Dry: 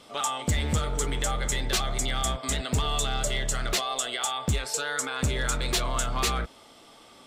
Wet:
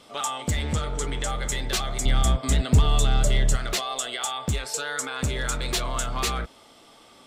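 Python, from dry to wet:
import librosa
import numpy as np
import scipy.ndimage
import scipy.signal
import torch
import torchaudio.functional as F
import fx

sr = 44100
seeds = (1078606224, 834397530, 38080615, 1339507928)

y = fx.bessel_lowpass(x, sr, hz=8500.0, order=2, at=(0.62, 1.28))
y = fx.low_shelf(y, sr, hz=320.0, db=11.0, at=(2.05, 3.56))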